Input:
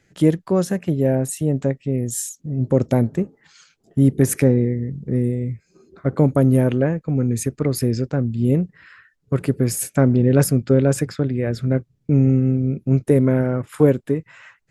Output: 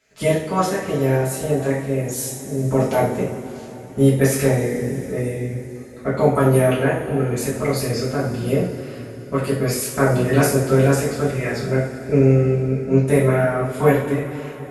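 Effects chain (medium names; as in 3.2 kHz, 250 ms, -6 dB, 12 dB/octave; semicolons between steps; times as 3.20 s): spectral peaks clipped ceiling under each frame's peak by 16 dB; comb of notches 170 Hz; two-slope reverb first 0.46 s, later 4.5 s, from -18 dB, DRR -8 dB; trim -7 dB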